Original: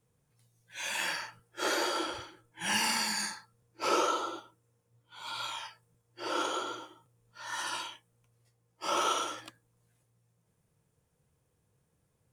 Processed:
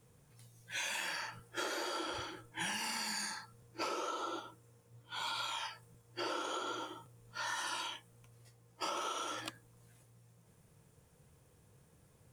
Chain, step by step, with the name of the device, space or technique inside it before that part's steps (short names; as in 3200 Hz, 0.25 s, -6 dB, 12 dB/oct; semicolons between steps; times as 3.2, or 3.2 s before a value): serial compression, leveller first (compressor 2.5:1, threshold -35 dBFS, peak gain reduction 8 dB; compressor 6:1, threshold -46 dBFS, peak gain reduction 14.5 dB); gain +9 dB